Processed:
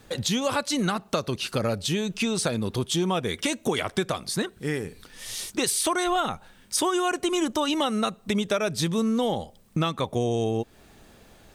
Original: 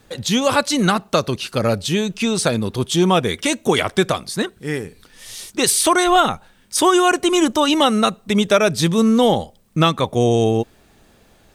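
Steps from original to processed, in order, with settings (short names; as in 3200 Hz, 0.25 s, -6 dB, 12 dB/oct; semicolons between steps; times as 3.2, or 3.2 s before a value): compressor 3:1, threshold -25 dBFS, peak gain reduction 12 dB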